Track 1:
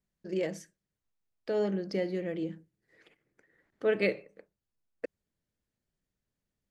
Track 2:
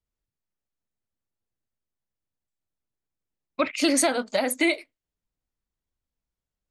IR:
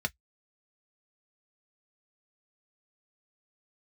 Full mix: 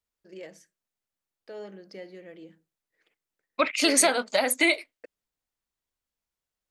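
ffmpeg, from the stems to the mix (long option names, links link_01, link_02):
-filter_complex "[0:a]agate=range=-33dB:threshold=-59dB:ratio=3:detection=peak,volume=-6.5dB[link_01];[1:a]volume=3dB[link_02];[link_01][link_02]amix=inputs=2:normalize=0,lowshelf=frequency=330:gain=-12"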